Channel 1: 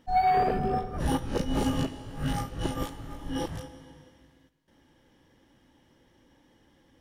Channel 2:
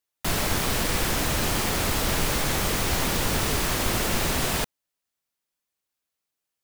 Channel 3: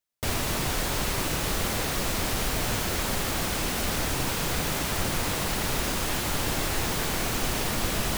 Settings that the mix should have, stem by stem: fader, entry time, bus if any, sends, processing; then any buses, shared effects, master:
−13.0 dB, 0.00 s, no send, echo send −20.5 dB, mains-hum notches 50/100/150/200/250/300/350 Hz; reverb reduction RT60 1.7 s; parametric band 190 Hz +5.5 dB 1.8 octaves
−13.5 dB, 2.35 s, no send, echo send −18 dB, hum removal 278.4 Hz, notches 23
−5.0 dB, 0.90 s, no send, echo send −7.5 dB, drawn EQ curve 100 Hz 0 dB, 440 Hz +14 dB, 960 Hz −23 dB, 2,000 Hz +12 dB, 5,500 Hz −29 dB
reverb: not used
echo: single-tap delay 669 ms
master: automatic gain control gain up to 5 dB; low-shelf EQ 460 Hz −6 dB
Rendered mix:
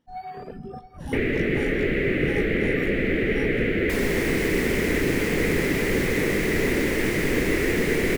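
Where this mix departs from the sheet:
stem 2: entry 2.35 s → 3.65 s
master: missing low-shelf EQ 460 Hz −6 dB

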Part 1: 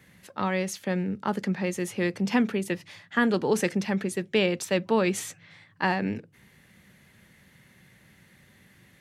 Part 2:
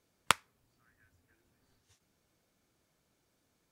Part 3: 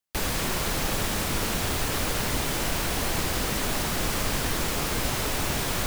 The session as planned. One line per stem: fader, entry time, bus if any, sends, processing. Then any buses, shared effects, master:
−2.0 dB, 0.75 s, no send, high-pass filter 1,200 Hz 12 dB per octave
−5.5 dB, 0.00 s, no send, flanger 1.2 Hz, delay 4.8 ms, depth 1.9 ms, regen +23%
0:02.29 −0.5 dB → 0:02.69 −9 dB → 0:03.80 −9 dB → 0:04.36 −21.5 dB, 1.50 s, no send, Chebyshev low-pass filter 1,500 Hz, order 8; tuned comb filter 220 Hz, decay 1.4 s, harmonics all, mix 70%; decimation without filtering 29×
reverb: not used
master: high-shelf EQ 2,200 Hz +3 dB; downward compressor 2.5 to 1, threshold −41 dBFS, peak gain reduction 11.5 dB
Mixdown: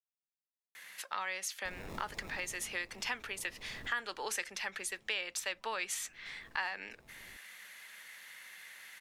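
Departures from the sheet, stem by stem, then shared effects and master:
stem 1 −2.0 dB → +9.0 dB
stem 2: muted
master: missing high-shelf EQ 2,200 Hz +3 dB

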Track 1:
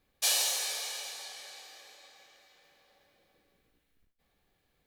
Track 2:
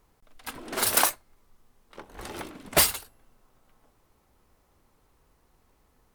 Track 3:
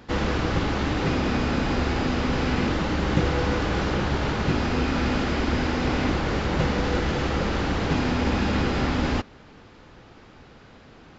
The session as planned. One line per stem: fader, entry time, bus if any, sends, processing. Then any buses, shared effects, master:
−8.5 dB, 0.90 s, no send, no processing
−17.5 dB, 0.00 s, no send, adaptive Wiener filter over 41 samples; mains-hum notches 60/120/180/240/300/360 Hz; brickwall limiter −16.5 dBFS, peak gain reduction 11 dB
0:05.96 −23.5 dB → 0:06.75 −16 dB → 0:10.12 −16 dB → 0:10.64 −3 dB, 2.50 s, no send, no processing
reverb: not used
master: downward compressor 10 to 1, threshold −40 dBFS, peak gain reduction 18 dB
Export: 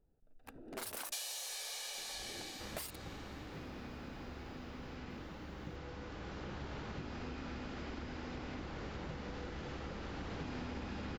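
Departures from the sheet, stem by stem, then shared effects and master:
stem 1 −8.5 dB → +2.0 dB
stem 2 −17.5 dB → −7.5 dB

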